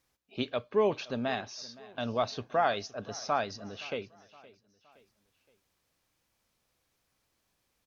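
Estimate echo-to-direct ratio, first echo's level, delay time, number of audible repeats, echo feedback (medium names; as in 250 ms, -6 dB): -20.0 dB, -21.0 dB, 518 ms, 3, 46%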